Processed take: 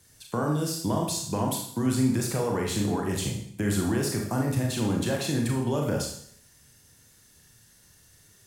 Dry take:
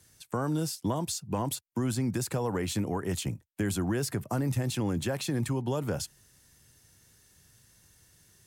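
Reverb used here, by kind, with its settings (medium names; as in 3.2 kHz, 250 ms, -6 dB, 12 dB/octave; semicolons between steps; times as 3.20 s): Schroeder reverb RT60 0.63 s, combs from 27 ms, DRR 0 dB; trim +1 dB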